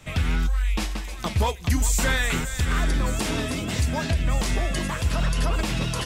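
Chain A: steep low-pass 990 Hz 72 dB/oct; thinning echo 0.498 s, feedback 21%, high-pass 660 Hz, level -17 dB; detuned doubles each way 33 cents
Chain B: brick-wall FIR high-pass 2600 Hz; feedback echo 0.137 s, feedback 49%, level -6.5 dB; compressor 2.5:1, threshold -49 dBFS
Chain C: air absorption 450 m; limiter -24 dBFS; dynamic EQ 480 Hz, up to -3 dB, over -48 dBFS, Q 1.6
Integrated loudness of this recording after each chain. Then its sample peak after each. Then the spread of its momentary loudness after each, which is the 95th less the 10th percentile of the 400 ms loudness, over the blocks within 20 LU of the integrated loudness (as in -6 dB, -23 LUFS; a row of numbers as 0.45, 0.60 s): -30.5, -43.5, -33.5 LUFS; -15.0, -26.5, -24.0 dBFS; 7, 4, 2 LU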